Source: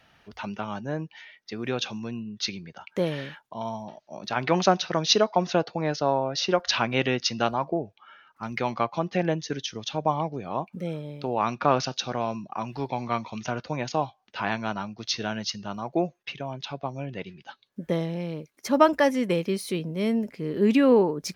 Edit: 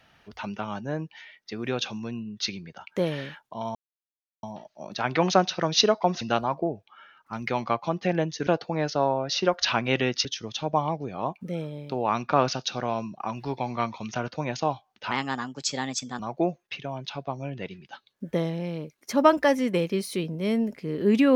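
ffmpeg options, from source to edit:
ffmpeg -i in.wav -filter_complex "[0:a]asplit=7[link_01][link_02][link_03][link_04][link_05][link_06][link_07];[link_01]atrim=end=3.75,asetpts=PTS-STARTPTS,afade=type=out:start_time=3.746:duration=0.004:curve=hsin,apad=pad_dur=0.68[link_08];[link_02]atrim=start=3.75:end=5.532,asetpts=PTS-STARTPTS,afade=type=in:duration=0.004:curve=hsin[link_09];[link_03]atrim=start=7.308:end=9.572[link_10];[link_04]atrim=start=5.528:end=7.312[link_11];[link_05]atrim=start=9.568:end=14.434[link_12];[link_06]atrim=start=14.43:end=15.75,asetpts=PTS-STARTPTS,asetrate=53802,aresample=44100[link_13];[link_07]atrim=start=15.746[link_14];[link_08][link_09]concat=n=2:v=0:a=1[link_15];[link_15][link_10]acrossfade=duration=0.004:curve1=hsin:curve2=hsin[link_16];[link_16][link_11]acrossfade=duration=0.004:curve1=hsin:curve2=hsin[link_17];[link_17][link_12]acrossfade=duration=0.004:curve1=hsin:curve2=hsin[link_18];[link_18][link_13]acrossfade=duration=0.004:curve1=hsin:curve2=hsin[link_19];[link_19][link_14]acrossfade=duration=0.004:curve1=hsin:curve2=hsin" out.wav

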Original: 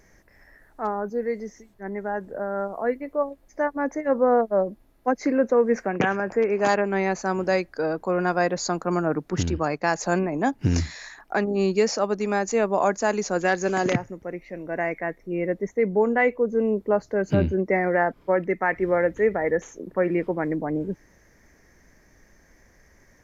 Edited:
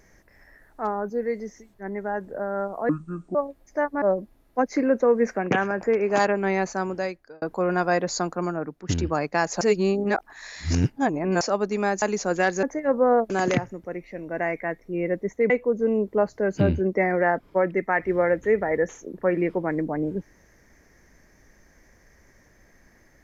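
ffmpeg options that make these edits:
ffmpeg -i in.wav -filter_complex "[0:a]asplit=12[link_01][link_02][link_03][link_04][link_05][link_06][link_07][link_08][link_09][link_10][link_11][link_12];[link_01]atrim=end=2.894[link_13];[link_02]atrim=start=2.89:end=3.17,asetpts=PTS-STARTPTS,asetrate=26901,aresample=44100[link_14];[link_03]atrim=start=3.166:end=3.842[link_15];[link_04]atrim=start=4.508:end=7.91,asetpts=PTS-STARTPTS,afade=type=out:start_time=2.642:duration=0.76[link_16];[link_05]atrim=start=7.91:end=9.38,asetpts=PTS-STARTPTS,afade=type=in:duration=0.004:curve=hsin,afade=type=out:start_time=0.75:duration=0.72:silence=0.199526[link_17];[link_06]atrim=start=9.38:end=10.102,asetpts=PTS-STARTPTS,afade=type=in:duration=0.004:curve=hsin:silence=0.199526[link_18];[link_07]atrim=start=10.098:end=11.902,asetpts=PTS-STARTPTS,areverse[link_19];[link_08]atrim=start=11.898:end=12.512[link_20];[link_09]atrim=start=13.068:end=13.682[link_21];[link_10]atrim=start=3.838:end=4.512[link_22];[link_11]atrim=start=13.678:end=15.882[link_23];[link_12]atrim=start=16.228[link_24];[link_13][link_14]acrossfade=duration=0.004:curve1=hsin:curve2=hsin[link_25];[link_25][link_15]acrossfade=duration=0.004:curve1=hsin:curve2=hsin[link_26];[link_16][link_17][link_18]concat=n=3:v=0:a=1[link_27];[link_26][link_27]acrossfade=duration=0.004:curve1=hsin:curve2=hsin[link_28];[link_28][link_19]acrossfade=duration=0.004:curve1=hsin:curve2=hsin[link_29];[link_29][link_20]acrossfade=duration=0.004:curve1=hsin:curve2=hsin[link_30];[link_30][link_21]acrossfade=duration=0.004:curve1=hsin:curve2=hsin[link_31];[link_31][link_22]acrossfade=duration=0.004:curve1=hsin:curve2=hsin[link_32];[link_32][link_23]acrossfade=duration=0.004:curve1=hsin:curve2=hsin[link_33];[link_33][link_24]acrossfade=duration=0.004:curve1=hsin:curve2=hsin" out.wav

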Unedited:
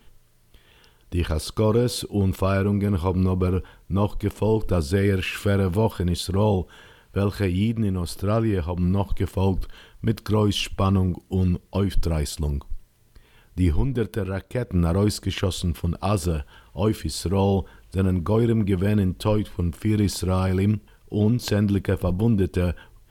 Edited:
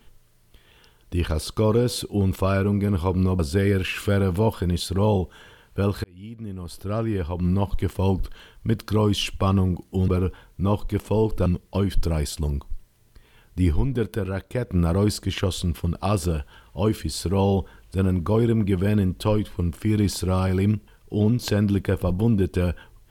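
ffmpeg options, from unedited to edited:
ffmpeg -i in.wav -filter_complex "[0:a]asplit=5[link_01][link_02][link_03][link_04][link_05];[link_01]atrim=end=3.392[link_06];[link_02]atrim=start=4.768:end=7.42,asetpts=PTS-STARTPTS,afade=type=out:start_time=2.648:duration=0.004:curve=hsin[link_07];[link_03]atrim=start=7.42:end=11.462,asetpts=PTS-STARTPTS,afade=type=in:duration=1.47[link_08];[link_04]atrim=start=3.388:end=4.772[link_09];[link_05]atrim=start=11.458[link_10];[link_07][link_08]concat=n=2:v=0:a=1[link_11];[link_06][link_11]acrossfade=duration=0.004:curve1=hsin:curve2=hsin[link_12];[link_12][link_09]acrossfade=duration=0.004:curve1=hsin:curve2=hsin[link_13];[link_13][link_10]acrossfade=duration=0.004:curve1=hsin:curve2=hsin" out.wav

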